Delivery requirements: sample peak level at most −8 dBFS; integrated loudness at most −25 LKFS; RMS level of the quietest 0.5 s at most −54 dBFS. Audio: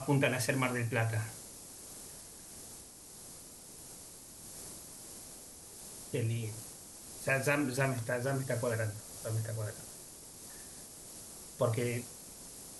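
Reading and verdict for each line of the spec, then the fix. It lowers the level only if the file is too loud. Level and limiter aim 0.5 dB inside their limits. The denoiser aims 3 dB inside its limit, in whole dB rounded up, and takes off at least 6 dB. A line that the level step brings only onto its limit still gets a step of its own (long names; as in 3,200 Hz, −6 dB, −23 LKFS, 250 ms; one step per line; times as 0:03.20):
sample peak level −16.0 dBFS: in spec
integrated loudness −36.5 LKFS: in spec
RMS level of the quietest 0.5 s −52 dBFS: out of spec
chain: broadband denoise 6 dB, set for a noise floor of −52 dBFS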